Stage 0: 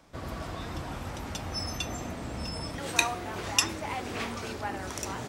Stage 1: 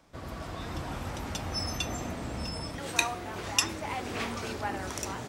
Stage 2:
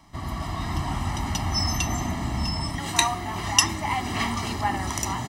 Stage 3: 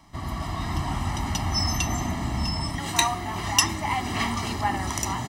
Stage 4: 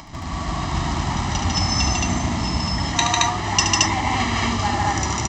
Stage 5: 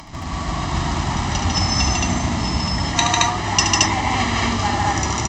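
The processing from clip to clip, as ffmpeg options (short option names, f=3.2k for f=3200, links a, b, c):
-af "dynaudnorm=f=240:g=5:m=4dB,volume=-3dB"
-af "aecho=1:1:1:0.9,volume=5dB"
-af "asoftclip=type=hard:threshold=-8dB"
-af "aresample=16000,acrusher=bits=3:mode=log:mix=0:aa=0.000001,aresample=44100,acompressor=mode=upward:threshold=-32dB:ratio=2.5,aecho=1:1:72.89|148.7|221.6:0.447|0.794|1,volume=1dB"
-af "volume=1.5dB" -ar 44100 -c:a aac -b:a 64k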